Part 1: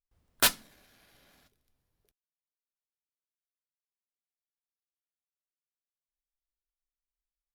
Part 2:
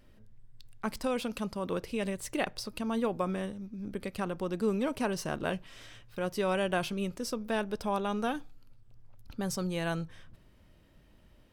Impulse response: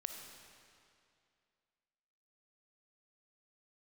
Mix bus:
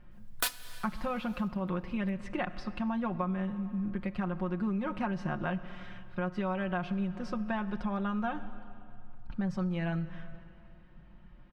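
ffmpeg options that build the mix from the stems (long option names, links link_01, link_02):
-filter_complex "[0:a]equalizer=frequency=200:width=0.96:gain=-12.5,aecho=1:1:4.1:0.81,volume=0dB,asplit=2[link_01][link_02];[link_02]volume=-12dB[link_03];[1:a]lowpass=1700,equalizer=frequency=450:width_type=o:width=0.92:gain=-12,aecho=1:1:5.6:0.73,volume=2.5dB,asplit=2[link_04][link_05];[link_05]volume=-6dB[link_06];[2:a]atrim=start_sample=2205[link_07];[link_03][link_06]amix=inputs=2:normalize=0[link_08];[link_08][link_07]afir=irnorm=-1:irlink=0[link_09];[link_01][link_04][link_09]amix=inputs=3:normalize=0,acompressor=threshold=-29dB:ratio=6"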